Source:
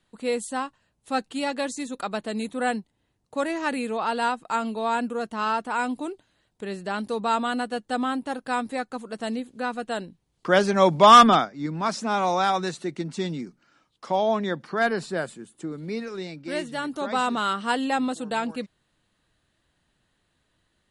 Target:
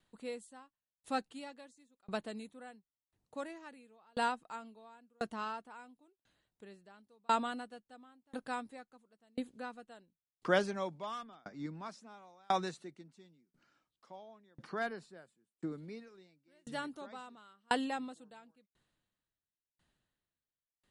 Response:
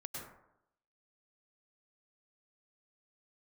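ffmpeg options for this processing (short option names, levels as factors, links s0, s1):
-af "aeval=exprs='val(0)*pow(10,-38*if(lt(mod(0.96*n/s,1),2*abs(0.96)/1000),1-mod(0.96*n/s,1)/(2*abs(0.96)/1000),(mod(0.96*n/s,1)-2*abs(0.96)/1000)/(1-2*abs(0.96)/1000))/20)':c=same,volume=0.562"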